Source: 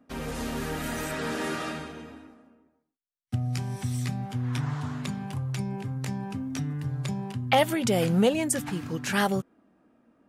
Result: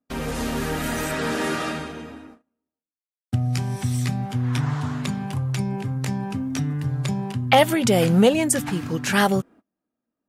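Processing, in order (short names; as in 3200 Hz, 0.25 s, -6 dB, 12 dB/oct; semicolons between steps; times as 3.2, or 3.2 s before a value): gate -51 dBFS, range -27 dB; gain +6 dB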